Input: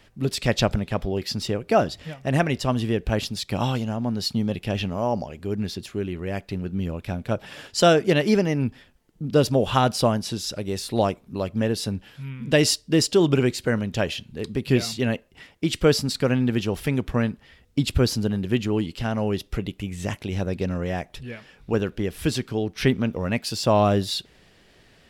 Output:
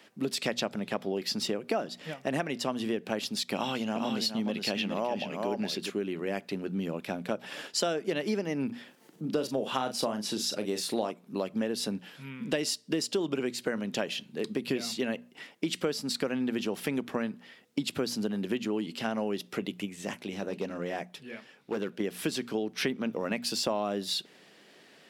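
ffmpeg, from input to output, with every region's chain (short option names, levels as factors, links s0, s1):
-filter_complex "[0:a]asettb=1/sr,asplit=3[s0][s1][s2];[s0]atrim=end=3.544[s3];[s1]atrim=start=3.54:end=5.9,asetpts=PTS-STARTPTS,afade=t=in:d=0.004:c=qsin,afade=t=out:st=2.356:d=0.004:c=qsin,equalizer=f=2500:t=o:w=1.6:g=5,aecho=1:1:414:0.473,atrim=end_sample=104076[s4];[s2]atrim=start=5.896[s5];[s3][s4]acrossfade=d=0.004:c1=hsin:c2=qsin[s6];[s6][s5]acrossfade=d=0.004:c1=qsin:c2=hsin,asettb=1/sr,asplit=3[s7][s8][s9];[s7]atrim=end=8.664[s10];[s8]atrim=start=8.66:end=11.11,asetpts=PTS-STARTPTS,afade=t=in:d=0.004:c=qsin,afade=t=out:st=2.446:d=0.004:c=qsin,acompressor=mode=upward:threshold=0.00891:ratio=2.5:attack=3.2:release=140:knee=2.83:detection=peak,asplit=2[s11][s12];[s12]adelay=38,volume=0.355[s13];[s11][s13]amix=inputs=2:normalize=0,atrim=end_sample=108045[s14];[s9]atrim=start=11.106[s15];[s10][s14]acrossfade=d=0.004:c1=hsin:c2=qsin[s16];[s16][s15]acrossfade=d=0.004:c1=qsin:c2=hsin,asettb=1/sr,asplit=3[s17][s18][s19];[s17]atrim=end=19.854[s20];[s18]atrim=start=19.85:end=22,asetpts=PTS-STARTPTS,afade=t=in:d=0.004:c=qsin,afade=t=out:st=2.146:d=0.004:c=qsin,flanger=delay=0.6:depth=8.9:regen=-68:speed=1:shape=sinusoidal,asoftclip=type=hard:threshold=0.0631[s21];[s19]atrim=start=21.996[s22];[s20][s21]acrossfade=d=0.004:c1=hsin:c2=qsin[s23];[s23][s22]acrossfade=d=0.004:c1=qsin:c2=hsin,highpass=f=190:w=0.5412,highpass=f=190:w=1.3066,bandreject=f=60:t=h:w=6,bandreject=f=120:t=h:w=6,bandreject=f=180:t=h:w=6,bandreject=f=240:t=h:w=6,acompressor=threshold=0.0447:ratio=6"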